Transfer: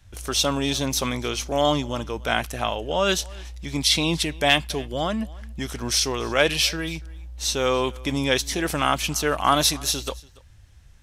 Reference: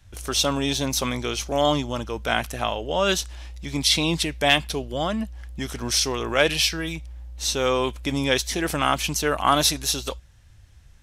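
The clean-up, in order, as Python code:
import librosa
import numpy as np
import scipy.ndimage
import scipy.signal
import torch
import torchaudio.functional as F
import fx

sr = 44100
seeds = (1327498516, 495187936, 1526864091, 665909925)

y = fx.fix_echo_inverse(x, sr, delay_ms=286, level_db=-23.5)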